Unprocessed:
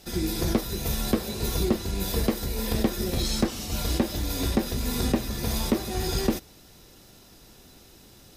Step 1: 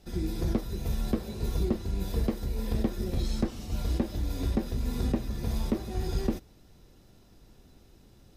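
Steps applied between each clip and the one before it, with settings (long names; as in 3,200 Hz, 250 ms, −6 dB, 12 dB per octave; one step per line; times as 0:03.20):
spectral tilt −2 dB per octave
level −8.5 dB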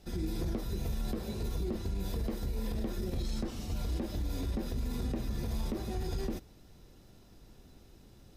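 brickwall limiter −26.5 dBFS, peak gain reduction 10.5 dB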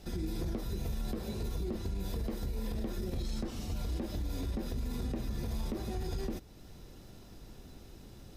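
downward compressor 1.5 to 1, threshold −50 dBFS, peak gain reduction 7.5 dB
level +5.5 dB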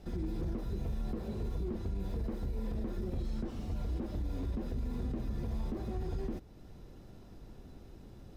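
high-shelf EQ 2,300 Hz −11 dB
slew-rate limiting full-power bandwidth 6.1 Hz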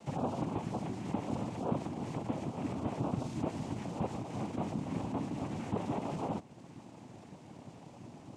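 cochlear-implant simulation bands 4
level +4.5 dB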